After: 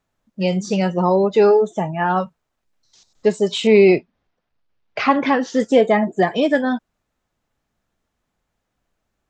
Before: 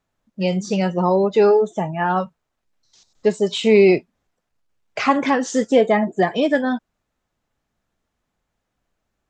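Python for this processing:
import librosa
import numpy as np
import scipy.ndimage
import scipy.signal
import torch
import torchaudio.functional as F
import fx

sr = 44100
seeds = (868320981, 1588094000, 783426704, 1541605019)

y = fx.lowpass(x, sr, hz=5000.0, slope=24, at=(3.67, 5.6))
y = y * 10.0 ** (1.0 / 20.0)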